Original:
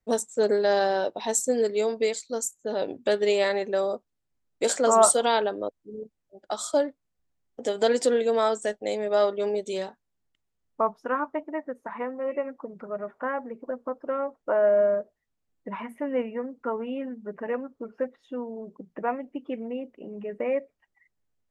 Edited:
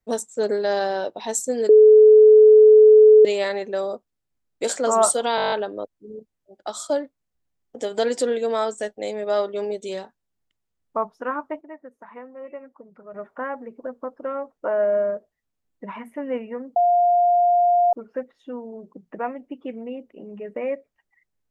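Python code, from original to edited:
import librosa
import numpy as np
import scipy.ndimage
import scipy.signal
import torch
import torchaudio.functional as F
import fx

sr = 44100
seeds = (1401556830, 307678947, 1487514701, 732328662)

y = fx.edit(x, sr, fx.bleep(start_s=1.69, length_s=1.56, hz=430.0, db=-7.0),
    fx.stutter(start_s=5.36, slice_s=0.02, count=9),
    fx.clip_gain(start_s=11.45, length_s=1.53, db=-8.0),
    fx.bleep(start_s=16.6, length_s=1.17, hz=704.0, db=-14.0), tone=tone)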